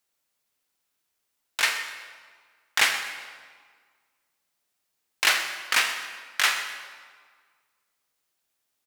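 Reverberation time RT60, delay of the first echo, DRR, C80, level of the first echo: 1.7 s, 126 ms, 6.0 dB, 8.5 dB, −15.0 dB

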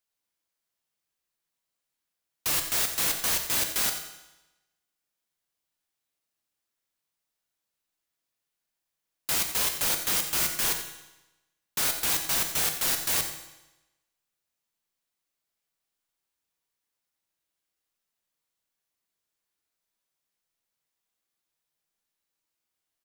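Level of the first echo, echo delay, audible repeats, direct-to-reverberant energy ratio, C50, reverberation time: −12.0 dB, 88 ms, 1, 4.5 dB, 7.0 dB, 1.0 s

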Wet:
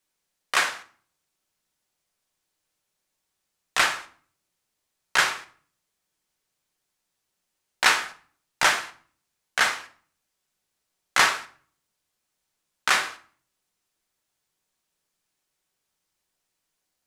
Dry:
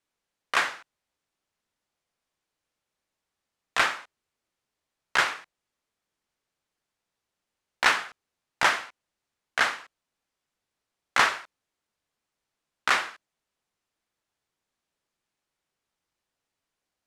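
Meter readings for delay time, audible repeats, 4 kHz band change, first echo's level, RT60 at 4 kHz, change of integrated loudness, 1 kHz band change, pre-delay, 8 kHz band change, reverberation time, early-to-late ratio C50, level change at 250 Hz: no echo audible, no echo audible, +4.5 dB, no echo audible, 0.40 s, +2.5 dB, +1.0 dB, 5 ms, +8.0 dB, 0.50 s, 15.0 dB, +1.0 dB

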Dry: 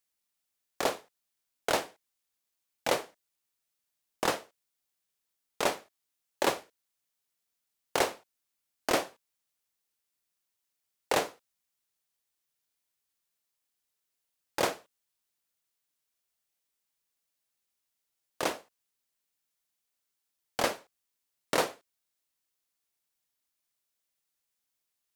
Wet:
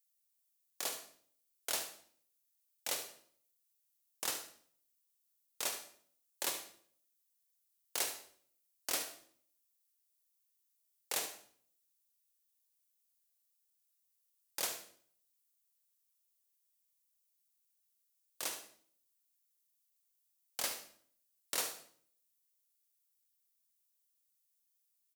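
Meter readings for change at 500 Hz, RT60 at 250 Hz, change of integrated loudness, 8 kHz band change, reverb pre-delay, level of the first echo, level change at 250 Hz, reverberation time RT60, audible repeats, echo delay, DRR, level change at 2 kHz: −17.5 dB, 0.70 s, −7.0 dB, +0.5 dB, 39 ms, −12.0 dB, −18.5 dB, 0.55 s, 1, 73 ms, 7.0 dB, −10.5 dB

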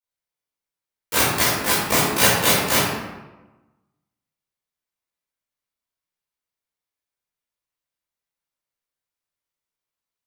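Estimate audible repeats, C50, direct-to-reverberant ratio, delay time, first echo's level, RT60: no echo audible, −1.0 dB, −13.5 dB, no echo audible, no echo audible, 1.1 s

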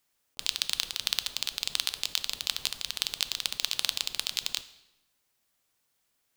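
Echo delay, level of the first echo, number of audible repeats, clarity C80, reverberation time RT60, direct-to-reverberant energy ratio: no echo audible, no echo audible, no echo audible, 17.0 dB, 0.95 s, 11.5 dB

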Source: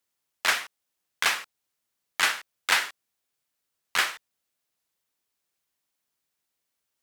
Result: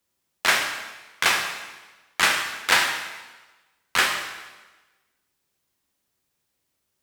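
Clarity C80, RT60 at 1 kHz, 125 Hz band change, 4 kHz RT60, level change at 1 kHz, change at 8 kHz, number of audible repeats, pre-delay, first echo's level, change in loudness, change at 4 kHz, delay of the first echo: 7.0 dB, 1.2 s, can't be measured, 1.1 s, +5.5 dB, +4.5 dB, no echo audible, 5 ms, no echo audible, +4.0 dB, +4.5 dB, no echo audible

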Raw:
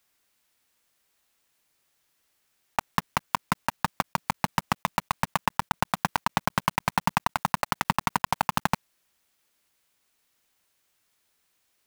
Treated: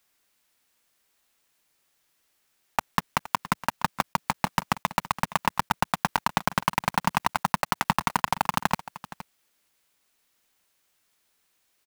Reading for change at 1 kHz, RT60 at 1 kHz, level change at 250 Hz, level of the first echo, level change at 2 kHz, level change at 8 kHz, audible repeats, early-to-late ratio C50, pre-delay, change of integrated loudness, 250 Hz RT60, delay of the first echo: +1.0 dB, no reverb audible, +0.5 dB, −16.5 dB, +1.0 dB, +1.0 dB, 1, no reverb audible, no reverb audible, +1.0 dB, no reverb audible, 468 ms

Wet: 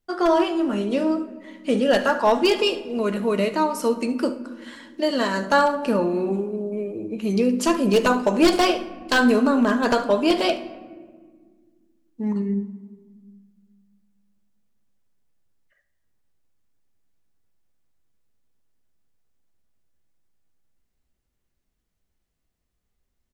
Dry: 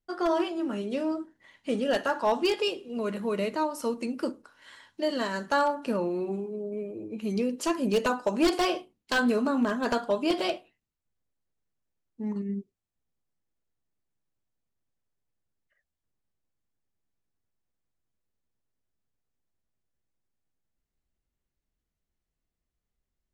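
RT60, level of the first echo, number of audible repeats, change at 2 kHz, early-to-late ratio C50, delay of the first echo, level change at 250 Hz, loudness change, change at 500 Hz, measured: 1.7 s, −18.0 dB, 1, +7.5 dB, 12.5 dB, 73 ms, +7.5 dB, +7.5 dB, +7.5 dB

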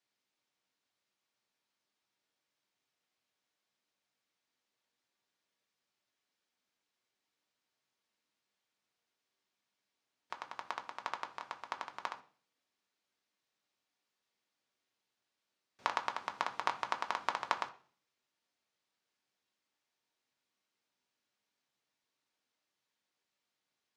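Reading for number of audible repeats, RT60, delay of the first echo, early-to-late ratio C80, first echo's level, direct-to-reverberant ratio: no echo audible, 0.45 s, no echo audible, 19.0 dB, no echo audible, 5.0 dB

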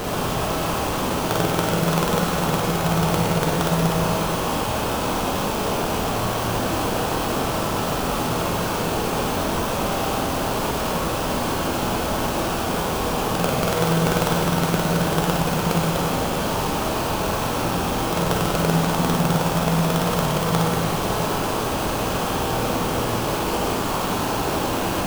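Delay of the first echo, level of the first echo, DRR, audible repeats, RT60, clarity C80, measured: no echo audible, no echo audible, −2.5 dB, no echo audible, 2.2 s, 1.0 dB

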